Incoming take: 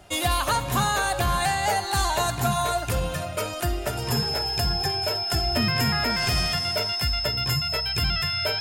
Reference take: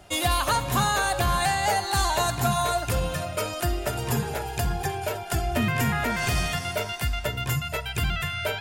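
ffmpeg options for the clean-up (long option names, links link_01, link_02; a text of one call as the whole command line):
ffmpeg -i in.wav -af "bandreject=frequency=5200:width=30" out.wav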